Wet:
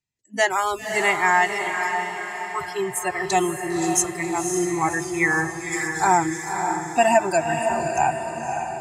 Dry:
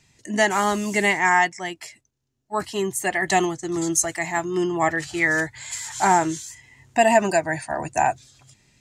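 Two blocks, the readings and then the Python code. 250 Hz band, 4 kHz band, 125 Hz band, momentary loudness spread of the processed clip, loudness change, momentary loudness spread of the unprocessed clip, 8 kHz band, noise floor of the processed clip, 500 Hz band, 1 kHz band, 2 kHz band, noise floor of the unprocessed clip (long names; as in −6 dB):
−0.5 dB, −1.0 dB, −0.5 dB, 10 LU, −0.5 dB, 13 LU, +0.5 dB, −35 dBFS, 0.0 dB, +1.0 dB, 0.0 dB, −74 dBFS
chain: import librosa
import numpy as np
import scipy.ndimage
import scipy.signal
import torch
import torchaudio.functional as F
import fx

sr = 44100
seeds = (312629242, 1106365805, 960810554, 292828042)

y = fx.noise_reduce_blind(x, sr, reduce_db=29)
y = fx.echo_diffused(y, sr, ms=544, feedback_pct=52, wet_db=-5.5)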